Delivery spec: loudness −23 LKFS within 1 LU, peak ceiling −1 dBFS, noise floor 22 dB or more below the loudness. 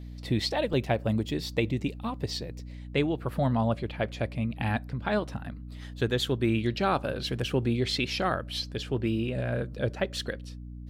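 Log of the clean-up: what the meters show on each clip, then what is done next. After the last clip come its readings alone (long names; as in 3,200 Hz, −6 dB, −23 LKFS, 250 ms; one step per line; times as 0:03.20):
number of dropouts 1; longest dropout 2.1 ms; mains hum 60 Hz; hum harmonics up to 300 Hz; level of the hum −38 dBFS; integrated loudness −29.5 LKFS; sample peak −13.5 dBFS; target loudness −23.0 LKFS
→ repair the gap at 0:00.73, 2.1 ms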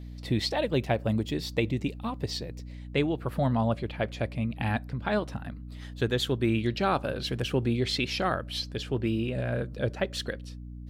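number of dropouts 0; mains hum 60 Hz; hum harmonics up to 300 Hz; level of the hum −38 dBFS
→ hum removal 60 Hz, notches 5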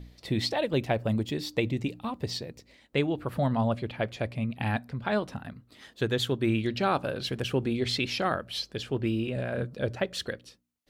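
mains hum none found; integrated loudness −30.0 LKFS; sample peak −12.5 dBFS; target loudness −23.0 LKFS
→ level +7 dB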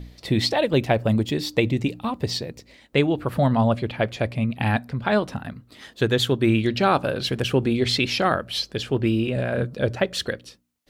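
integrated loudness −23.0 LKFS; sample peak −5.5 dBFS; background noise floor −55 dBFS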